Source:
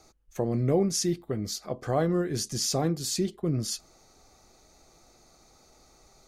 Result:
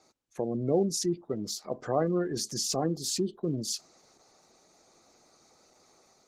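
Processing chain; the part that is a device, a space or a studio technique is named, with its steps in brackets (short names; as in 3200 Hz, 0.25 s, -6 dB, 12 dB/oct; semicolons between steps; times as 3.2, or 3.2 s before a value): 0.57–1.64 gate with hold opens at -46 dBFS; noise-suppressed video call (HPF 180 Hz 12 dB/oct; spectral gate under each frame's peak -25 dB strong; AGC gain up to 3 dB; gain -3.5 dB; Opus 16 kbps 48000 Hz)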